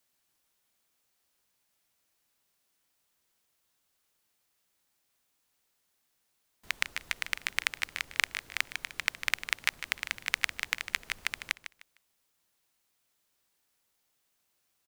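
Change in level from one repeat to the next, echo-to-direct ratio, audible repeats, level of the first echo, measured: -12.5 dB, -11.0 dB, 2, -11.5 dB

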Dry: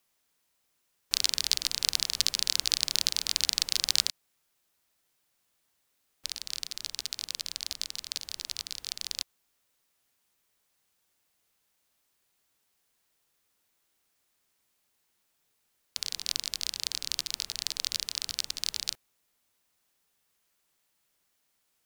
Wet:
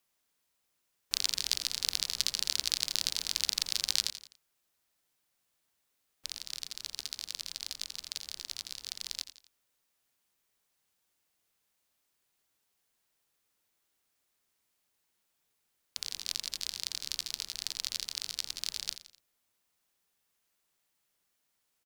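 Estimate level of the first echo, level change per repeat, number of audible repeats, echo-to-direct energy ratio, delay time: -13.0 dB, -7.0 dB, 3, -12.0 dB, 85 ms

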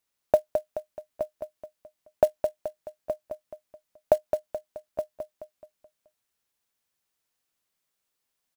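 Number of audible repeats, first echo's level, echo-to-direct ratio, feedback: 4, -6.5 dB, -5.5 dB, 44%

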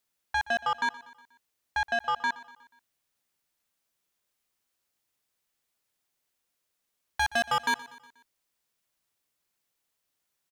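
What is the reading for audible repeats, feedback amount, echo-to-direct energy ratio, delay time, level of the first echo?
3, 53%, -17.5 dB, 121 ms, -19.0 dB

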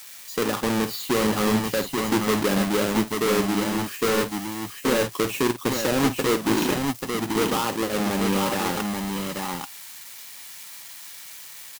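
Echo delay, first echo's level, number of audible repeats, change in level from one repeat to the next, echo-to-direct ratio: 51 ms, -11.0 dB, 2, no regular repeats, -3.0 dB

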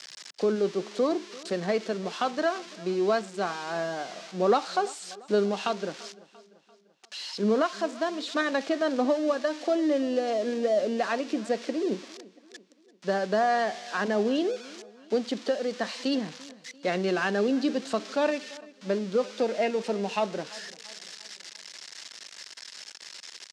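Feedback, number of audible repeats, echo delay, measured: 50%, 3, 342 ms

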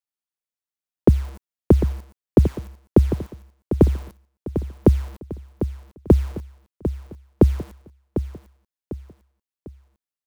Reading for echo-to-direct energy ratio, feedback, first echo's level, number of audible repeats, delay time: -9.5 dB, 39%, -10.0 dB, 4, 749 ms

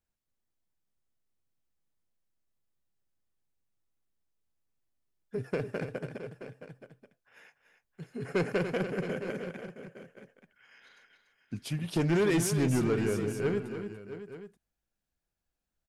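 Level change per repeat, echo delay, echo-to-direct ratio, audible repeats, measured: no regular repeats, 288 ms, -7.5 dB, 3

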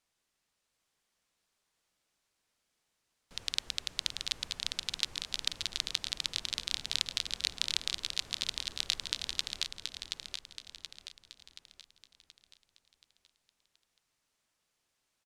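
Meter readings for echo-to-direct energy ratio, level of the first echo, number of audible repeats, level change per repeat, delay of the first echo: -4.0 dB, -5.0 dB, 5, -6.5 dB, 727 ms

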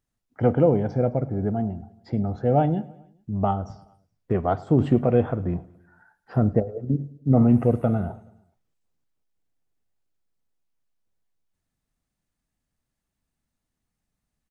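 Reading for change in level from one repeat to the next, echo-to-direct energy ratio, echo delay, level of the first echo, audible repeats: -4.5 dB, -20.5 dB, 106 ms, -22.0 dB, 3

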